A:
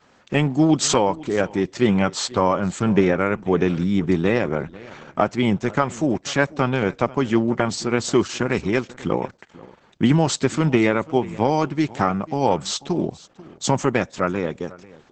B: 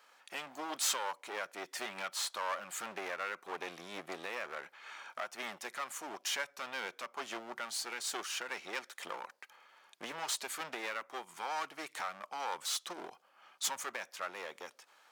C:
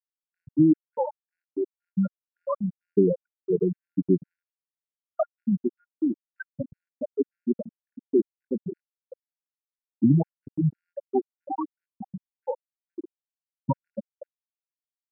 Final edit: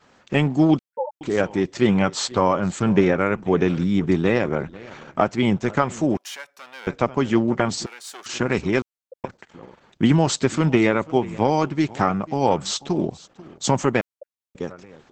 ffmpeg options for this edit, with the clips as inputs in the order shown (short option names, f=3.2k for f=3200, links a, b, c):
-filter_complex "[2:a]asplit=3[a][b][c];[1:a]asplit=2[d][e];[0:a]asplit=6[f][g][h][i][j][k];[f]atrim=end=0.792[l];[a]atrim=start=0.788:end=1.212[m];[g]atrim=start=1.208:end=6.172[n];[d]atrim=start=6.168:end=6.872[o];[h]atrim=start=6.868:end=7.862[p];[e]atrim=start=7.858:end=8.262[q];[i]atrim=start=8.258:end=8.822[r];[b]atrim=start=8.818:end=9.242[s];[j]atrim=start=9.238:end=14.012[t];[c]atrim=start=14.008:end=14.552[u];[k]atrim=start=14.548[v];[l][m]acrossfade=d=0.004:c1=hsin:c2=hsin[w];[w][n]acrossfade=d=0.004:c1=hsin:c2=hsin[x];[x][o]acrossfade=d=0.004:c1=hsin:c2=hsin[y];[y][p]acrossfade=d=0.004:c1=hsin:c2=hsin[z];[z][q]acrossfade=d=0.004:c1=hsin:c2=hsin[aa];[aa][r]acrossfade=d=0.004:c1=hsin:c2=hsin[ab];[ab][s]acrossfade=d=0.004:c1=hsin:c2=hsin[ac];[ac][t]acrossfade=d=0.004:c1=hsin:c2=hsin[ad];[ad][u]acrossfade=d=0.004:c1=hsin:c2=hsin[ae];[ae][v]acrossfade=d=0.004:c1=hsin:c2=hsin"